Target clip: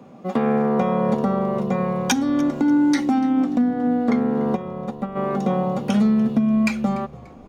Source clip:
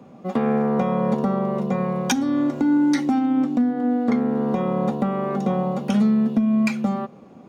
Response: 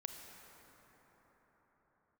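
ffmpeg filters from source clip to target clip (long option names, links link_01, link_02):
-filter_complex "[0:a]lowshelf=frequency=260:gain=-2.5,asplit=3[link_01][link_02][link_03];[link_01]afade=type=out:start_time=4.55:duration=0.02[link_04];[link_02]agate=range=-10dB:threshold=-20dB:ratio=16:detection=peak,afade=type=in:start_time=4.55:duration=0.02,afade=type=out:start_time=5.15:duration=0.02[link_05];[link_03]afade=type=in:start_time=5.15:duration=0.02[link_06];[link_04][link_05][link_06]amix=inputs=3:normalize=0,asplit=4[link_07][link_08][link_09][link_10];[link_08]adelay=292,afreqshift=-73,volume=-21dB[link_11];[link_09]adelay=584,afreqshift=-146,volume=-30.1dB[link_12];[link_10]adelay=876,afreqshift=-219,volume=-39.2dB[link_13];[link_07][link_11][link_12][link_13]amix=inputs=4:normalize=0,volume=2dB"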